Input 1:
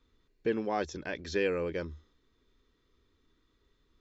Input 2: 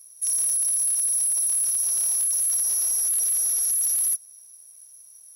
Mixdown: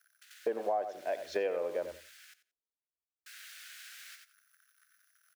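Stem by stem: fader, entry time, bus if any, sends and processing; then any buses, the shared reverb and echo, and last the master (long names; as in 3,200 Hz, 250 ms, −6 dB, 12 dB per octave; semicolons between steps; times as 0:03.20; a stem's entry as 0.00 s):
−1.5 dB, 0.00 s, no send, echo send −11.5 dB, multiband upward and downward expander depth 100%
−6.0 dB, 0.00 s, muted 0:02.25–0:03.26, no send, echo send −5.5 dB, phase distortion by the signal itself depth 0.69 ms; elliptic high-pass filter 1,500 Hz, stop band 40 dB; downward compressor 6 to 1, threshold −33 dBFS, peak gain reduction 10 dB; automatic ducking −18 dB, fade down 0.50 s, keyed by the first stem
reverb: not used
echo: repeating echo 89 ms, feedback 18%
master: high-pass with resonance 660 Hz, resonance Q 6.6; spectral tilt −4 dB per octave; downward compressor 10 to 1, threshold −29 dBFS, peak gain reduction 16 dB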